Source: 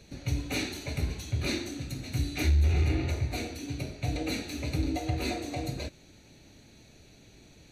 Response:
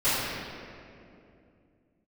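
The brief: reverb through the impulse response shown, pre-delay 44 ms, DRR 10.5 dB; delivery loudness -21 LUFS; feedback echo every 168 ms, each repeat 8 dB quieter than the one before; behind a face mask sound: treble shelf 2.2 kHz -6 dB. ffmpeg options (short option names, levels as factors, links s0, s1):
-filter_complex "[0:a]aecho=1:1:168|336|504|672|840:0.398|0.159|0.0637|0.0255|0.0102,asplit=2[s0][s1];[1:a]atrim=start_sample=2205,adelay=44[s2];[s1][s2]afir=irnorm=-1:irlink=0,volume=0.0501[s3];[s0][s3]amix=inputs=2:normalize=0,highshelf=f=2200:g=-6,volume=3.16"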